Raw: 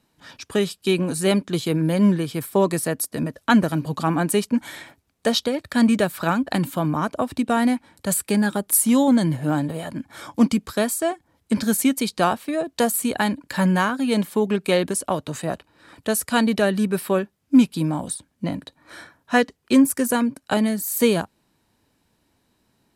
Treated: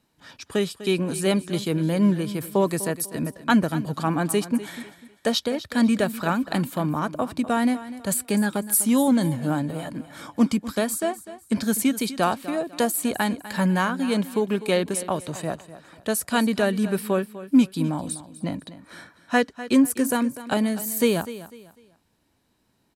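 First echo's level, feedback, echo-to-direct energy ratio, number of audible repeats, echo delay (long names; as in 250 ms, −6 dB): −15.0 dB, 31%, −14.5 dB, 2, 249 ms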